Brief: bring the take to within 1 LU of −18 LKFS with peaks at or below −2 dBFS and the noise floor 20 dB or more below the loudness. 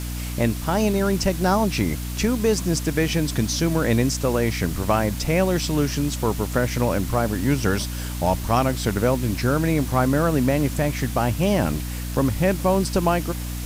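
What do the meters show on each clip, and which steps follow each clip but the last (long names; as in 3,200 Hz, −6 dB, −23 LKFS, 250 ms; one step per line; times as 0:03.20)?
mains hum 60 Hz; hum harmonics up to 300 Hz; level of the hum −27 dBFS; background noise floor −29 dBFS; target noise floor −42 dBFS; integrated loudness −22.0 LKFS; sample peak −6.5 dBFS; target loudness −18.0 LKFS
→ hum removal 60 Hz, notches 5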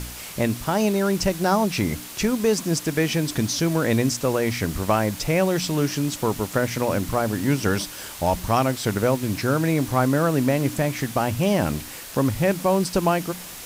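mains hum none found; background noise floor −38 dBFS; target noise floor −43 dBFS
→ noise reduction from a noise print 6 dB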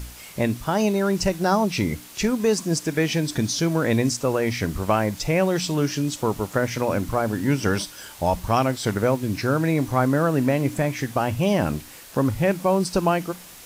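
background noise floor −43 dBFS; integrated loudness −23.0 LKFS; sample peak −7.5 dBFS; target loudness −18.0 LKFS
→ level +5 dB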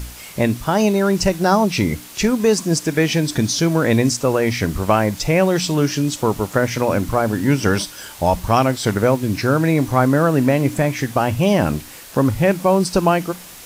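integrated loudness −18.0 LKFS; sample peak −2.5 dBFS; background noise floor −38 dBFS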